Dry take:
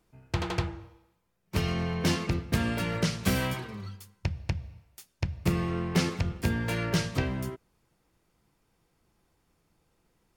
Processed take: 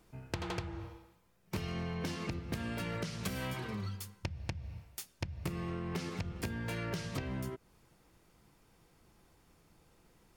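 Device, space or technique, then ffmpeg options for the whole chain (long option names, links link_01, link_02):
serial compression, leveller first: -af "acompressor=threshold=-30dB:ratio=2.5,acompressor=threshold=-41dB:ratio=6,volume=5.5dB"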